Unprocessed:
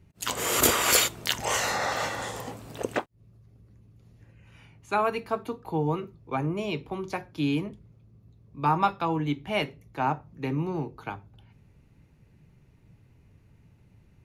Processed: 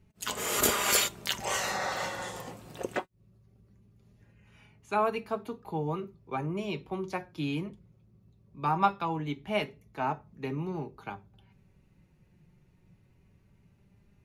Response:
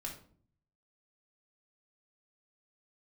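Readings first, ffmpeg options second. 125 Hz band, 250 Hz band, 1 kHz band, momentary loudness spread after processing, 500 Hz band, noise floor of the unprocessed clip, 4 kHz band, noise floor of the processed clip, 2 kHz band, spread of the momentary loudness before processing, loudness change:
-5.0 dB, -5.0 dB, -3.0 dB, 14 LU, -3.5 dB, -60 dBFS, -4.0 dB, -65 dBFS, -4.0 dB, 14 LU, -4.0 dB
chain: -af "flanger=delay=4.6:depth=1:regen=49:speed=0.2:shape=triangular"

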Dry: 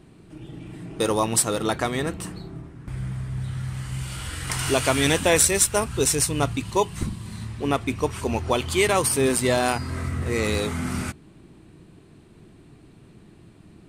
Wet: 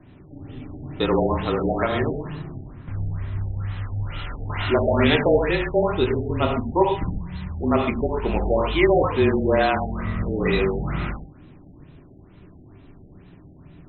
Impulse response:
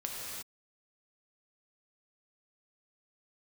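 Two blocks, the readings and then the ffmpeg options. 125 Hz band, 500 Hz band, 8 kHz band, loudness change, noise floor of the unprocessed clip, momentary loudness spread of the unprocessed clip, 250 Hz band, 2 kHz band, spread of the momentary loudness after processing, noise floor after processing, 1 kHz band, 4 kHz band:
+2.0 dB, +3.5 dB, under -40 dB, +0.5 dB, -51 dBFS, 15 LU, +3.5 dB, 0.0 dB, 15 LU, -48 dBFS, +2.0 dB, -3.5 dB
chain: -filter_complex "[0:a]bandreject=f=91.21:t=h:w=4,bandreject=f=182.42:t=h:w=4,bandreject=f=273.63:t=h:w=4,bandreject=f=364.84:t=h:w=4,bandreject=f=456.05:t=h:w=4,bandreject=f=547.26:t=h:w=4,bandreject=f=638.47:t=h:w=4,bandreject=f=729.68:t=h:w=4,bandreject=f=820.89:t=h:w=4,bandreject=f=912.1:t=h:w=4,bandreject=f=1.00331k:t=h:w=4,bandreject=f=1.09452k:t=h:w=4,bandreject=f=1.18573k:t=h:w=4,bandreject=f=1.27694k:t=h:w=4,bandreject=f=1.36815k:t=h:w=4,bandreject=f=1.45936k:t=h:w=4,bandreject=f=1.55057k:t=h:w=4,bandreject=f=1.64178k:t=h:w=4,bandreject=f=1.73299k:t=h:w=4,bandreject=f=1.8242k:t=h:w=4,bandreject=f=1.91541k:t=h:w=4,bandreject=f=2.00662k:t=h:w=4,bandreject=f=2.09783k:t=h:w=4,bandreject=f=2.18904k:t=h:w=4,bandreject=f=2.28025k:t=h:w=4,bandreject=f=2.37146k:t=h:w=4,bandreject=f=2.46267k:t=h:w=4,bandreject=f=2.55388k:t=h:w=4,bandreject=f=2.64509k:t=h:w=4,bandreject=f=2.7363k:t=h:w=4,bandreject=f=2.82751k:t=h:w=4,bandreject=f=2.91872k:t=h:w=4,afreqshift=-31[a];[1:a]atrim=start_sample=2205,atrim=end_sample=6174[b];[a][b]afir=irnorm=-1:irlink=0,afftfilt=real='re*lt(b*sr/1024,810*pow(4200/810,0.5+0.5*sin(2*PI*2.2*pts/sr)))':imag='im*lt(b*sr/1024,810*pow(4200/810,0.5+0.5*sin(2*PI*2.2*pts/sr)))':win_size=1024:overlap=0.75,volume=3.5dB"

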